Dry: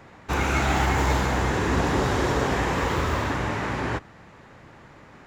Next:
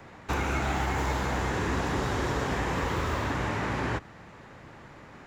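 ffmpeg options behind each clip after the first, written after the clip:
-filter_complex "[0:a]acrossover=split=260|870|2100[a][b][c][d];[a]acompressor=threshold=-30dB:ratio=4[e];[b]acompressor=threshold=-34dB:ratio=4[f];[c]acompressor=threshold=-35dB:ratio=4[g];[d]acompressor=threshold=-41dB:ratio=4[h];[e][f][g][h]amix=inputs=4:normalize=0"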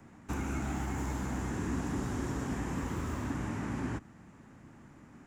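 -af "equalizer=f=250:t=o:w=1:g=8,equalizer=f=500:t=o:w=1:g=-8,equalizer=f=1k:t=o:w=1:g=-3,equalizer=f=2k:t=o:w=1:g=-4,equalizer=f=4k:t=o:w=1:g=-10,equalizer=f=8k:t=o:w=1:g=6,volume=-6dB"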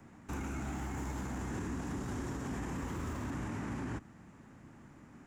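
-af "alimiter=level_in=6dB:limit=-24dB:level=0:latency=1:release=21,volume=-6dB,volume=-1dB"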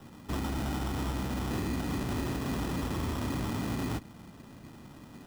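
-af "acrusher=samples=20:mix=1:aa=0.000001,volume=6dB"

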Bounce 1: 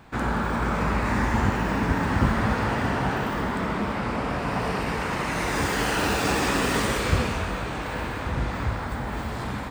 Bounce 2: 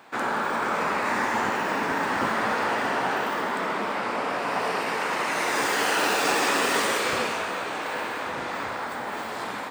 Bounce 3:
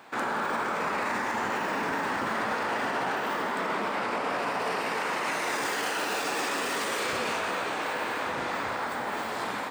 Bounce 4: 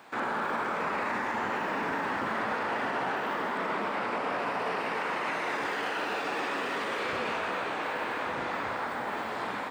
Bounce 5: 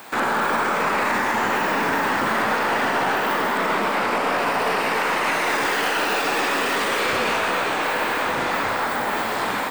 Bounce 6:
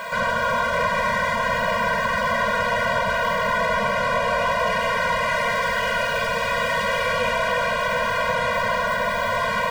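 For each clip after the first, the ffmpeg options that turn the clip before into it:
-af "highpass=400,volume=2.5dB"
-af "alimiter=limit=-21dB:level=0:latency=1:release=35"
-filter_complex "[0:a]acrossover=split=3800[a][b];[b]acompressor=threshold=-55dB:ratio=4:attack=1:release=60[c];[a][c]amix=inputs=2:normalize=0,volume=-1.5dB"
-filter_complex "[0:a]aemphasis=mode=production:type=50fm,asplit=2[a][b];[b]aeval=exprs='clip(val(0),-1,0.0158)':c=same,volume=-8.5dB[c];[a][c]amix=inputs=2:normalize=0,volume=7.5dB"
-filter_complex "[0:a]asplit=2[a][b];[b]highpass=f=720:p=1,volume=26dB,asoftclip=type=tanh:threshold=-10.5dB[c];[a][c]amix=inputs=2:normalize=0,lowpass=f=1.4k:p=1,volume=-6dB,afftfilt=real='re*eq(mod(floor(b*sr/1024/230),2),0)':imag='im*eq(mod(floor(b*sr/1024/230),2),0)':win_size=1024:overlap=0.75"

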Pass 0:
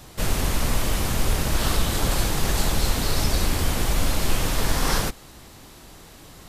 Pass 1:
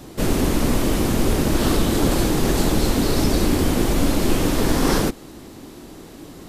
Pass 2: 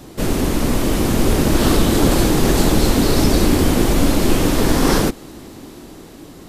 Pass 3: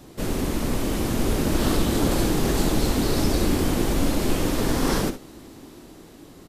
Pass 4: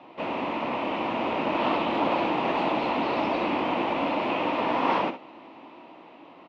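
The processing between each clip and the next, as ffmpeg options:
-af "equalizer=f=300:t=o:w=1.6:g=13.5"
-af "dynaudnorm=f=240:g=9:m=5dB,volume=1dB"
-af "aecho=1:1:63|78:0.251|0.106,volume=-7.5dB"
-af "highpass=380,equalizer=f=410:t=q:w=4:g=-8,equalizer=f=660:t=q:w=4:g=4,equalizer=f=950:t=q:w=4:g=9,equalizer=f=1.6k:t=q:w=4:g=-8,equalizer=f=2.6k:t=q:w=4:g=7,lowpass=f=2.8k:w=0.5412,lowpass=f=2.8k:w=1.3066,volume=2dB"

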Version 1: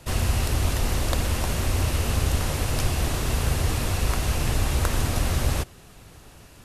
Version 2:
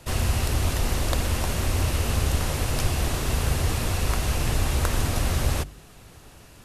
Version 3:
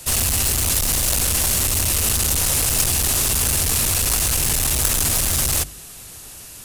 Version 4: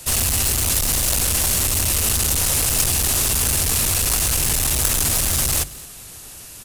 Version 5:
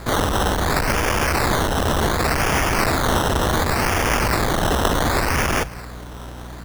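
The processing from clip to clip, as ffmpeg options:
-af "bandreject=f=49.42:t=h:w=4,bandreject=f=98.84:t=h:w=4,bandreject=f=148.26:t=h:w=4,bandreject=f=197.68:t=h:w=4,bandreject=f=247.1:t=h:w=4,bandreject=f=296.52:t=h:w=4"
-af "equalizer=f=8.4k:t=o:w=0.77:g=2.5,asoftclip=type=hard:threshold=-23dB,crystalizer=i=4.5:c=0,volume=1.5dB"
-af "aecho=1:1:221:0.0891"
-af "aeval=exprs='val(0)+0.0178*(sin(2*PI*60*n/s)+sin(2*PI*2*60*n/s)/2+sin(2*PI*3*60*n/s)/3+sin(2*PI*4*60*n/s)/4+sin(2*PI*5*60*n/s)/5)':c=same,acrusher=samples=15:mix=1:aa=0.000001:lfo=1:lforange=9:lforate=0.68"

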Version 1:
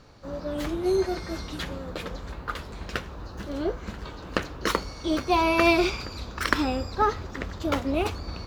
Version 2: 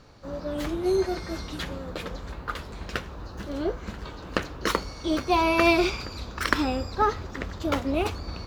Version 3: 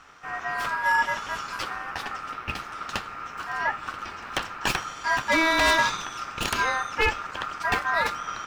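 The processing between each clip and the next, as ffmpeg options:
-af anull
-af "aeval=exprs='0.158*(abs(mod(val(0)/0.158+3,4)-2)-1)':c=same,aeval=exprs='val(0)*sin(2*PI*1300*n/s)':c=same,volume=4dB"

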